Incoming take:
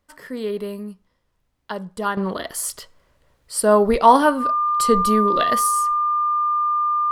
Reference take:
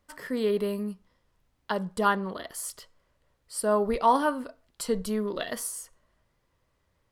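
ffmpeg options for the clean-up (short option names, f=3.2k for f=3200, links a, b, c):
-af "bandreject=f=1.2k:w=30,asetnsamples=n=441:p=0,asendcmd='2.17 volume volume -9.5dB',volume=0dB"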